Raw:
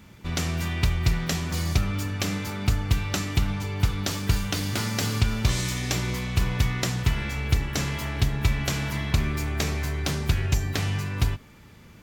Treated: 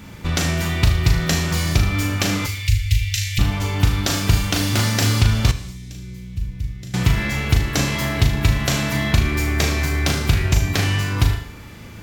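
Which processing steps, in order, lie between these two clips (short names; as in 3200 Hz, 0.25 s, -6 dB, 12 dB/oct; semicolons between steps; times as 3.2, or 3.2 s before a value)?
flutter echo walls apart 6.5 m, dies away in 0.39 s; in parallel at +2 dB: compressor, threshold -30 dBFS, peak gain reduction 14.5 dB; 2.46–3.39 on the sum: Chebyshev band-stop 110–2000 Hz, order 4; 5.51–6.94 passive tone stack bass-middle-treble 10-0-1; non-linear reverb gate 0.28 s falling, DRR 10.5 dB; gain +2.5 dB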